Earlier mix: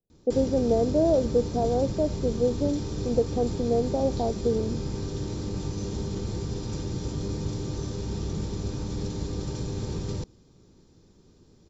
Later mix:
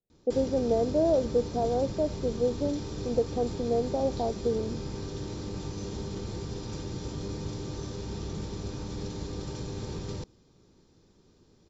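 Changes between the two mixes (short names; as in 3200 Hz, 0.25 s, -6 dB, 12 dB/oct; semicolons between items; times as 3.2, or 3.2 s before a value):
background: add air absorption 50 m; master: add low shelf 400 Hz -6 dB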